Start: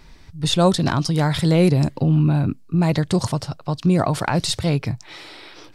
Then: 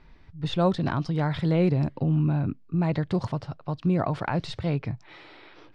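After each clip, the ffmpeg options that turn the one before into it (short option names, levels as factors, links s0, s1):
-af "lowpass=2700,volume=0.473"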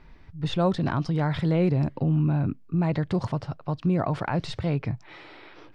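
-filter_complex "[0:a]equalizer=f=3900:t=o:w=0.77:g=-2.5,asplit=2[s0][s1];[s1]alimiter=limit=0.0708:level=0:latency=1,volume=0.891[s2];[s0][s2]amix=inputs=2:normalize=0,volume=0.708"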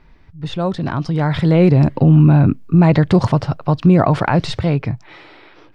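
-af "dynaudnorm=f=220:g=13:m=5.01,volume=1.26"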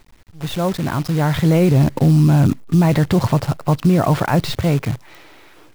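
-af "alimiter=limit=0.447:level=0:latency=1:release=15,acrusher=bits=6:dc=4:mix=0:aa=0.000001"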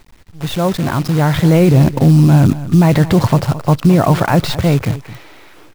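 -af "aecho=1:1:218:0.168,volume=1.58"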